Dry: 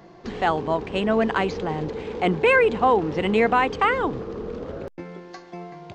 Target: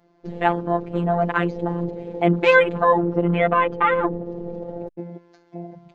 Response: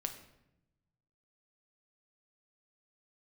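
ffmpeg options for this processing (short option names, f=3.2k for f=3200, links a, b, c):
-filter_complex "[0:a]afwtdn=0.0398,asettb=1/sr,asplit=3[a][b][c];[a]atrim=end=3.014[d];[b]atrim=start=3.01:end=4.26,asetpts=PTS-STARTPTS,afade=t=in:d=0.004:c=qsin,afade=t=out:st=1.246:d=0.004:c=qsin,aemphasis=mode=reproduction:type=75fm[e];[c]atrim=start=4.256[f];[d][e]acrossfade=d=0.004:c1=hsin:c2=qsin[g];[g][f]acrossfade=d=0.004:c1=qsin:c2=hsin,afftfilt=real='hypot(re,im)*cos(PI*b)':imag='0':win_size=1024:overlap=0.75,volume=5.5dB"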